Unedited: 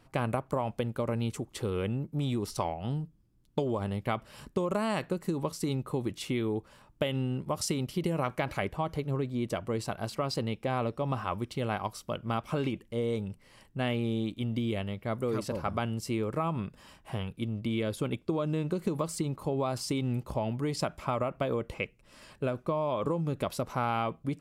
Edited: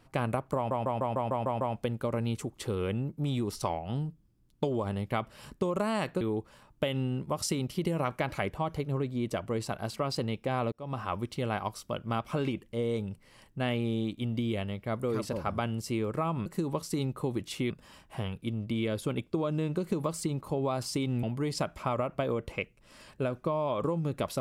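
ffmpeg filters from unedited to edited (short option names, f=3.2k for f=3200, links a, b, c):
-filter_complex "[0:a]asplit=13[a][b][c][d][e][f][g][h][i][j][k][l][m];[a]atrim=end=0.712[n];[b]atrim=start=0.558:end=0.712[o];[c]atrim=start=0.558:end=0.712[p];[d]atrim=start=0.558:end=0.712[q];[e]atrim=start=0.558:end=0.712[r];[f]atrim=start=0.558:end=0.712[s];[g]atrim=start=0.558:end=0.712[t];[h]atrim=start=0.558:end=5.162[u];[i]atrim=start=6.398:end=10.91,asetpts=PTS-STARTPTS,afade=t=out:st=4.508:d=0.004:c=hsin[v];[j]atrim=start=10.91:end=16.652,asetpts=PTS-STARTPTS,afade=t=in:d=0.48:c=qsin[w];[k]atrim=start=5.158:end=6.402[x];[l]atrim=start=16.648:end=20.182[y];[m]atrim=start=20.448[z];[n][o]acrossfade=d=0.004:c1=hsin:c2=hsin[aa];[aa][p]acrossfade=d=0.004:c1=hsin:c2=hsin[ab];[ab][q]acrossfade=d=0.004:c1=hsin:c2=hsin[ac];[ac][r]acrossfade=d=0.004:c1=hsin:c2=hsin[ad];[ad][s]acrossfade=d=0.004:c1=hsin:c2=hsin[ae];[ae][t]acrossfade=d=0.004:c1=hsin:c2=hsin[af];[af][u]acrossfade=d=0.004:c1=hsin:c2=hsin[ag];[v][w]concat=n=2:v=0:a=1[ah];[ag][ah]acrossfade=d=0.004:c1=hsin:c2=hsin[ai];[ai][x]acrossfade=d=0.004:c1=hsin:c2=hsin[aj];[aj][y]acrossfade=d=0.004:c1=hsin:c2=hsin[ak];[ak][z]acrossfade=d=0.004:c1=hsin:c2=hsin"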